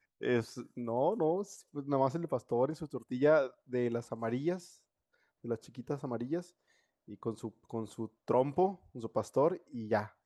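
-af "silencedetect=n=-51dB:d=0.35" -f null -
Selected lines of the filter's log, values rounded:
silence_start: 4.75
silence_end: 5.44 | silence_duration: 0.69
silence_start: 6.50
silence_end: 7.08 | silence_duration: 0.59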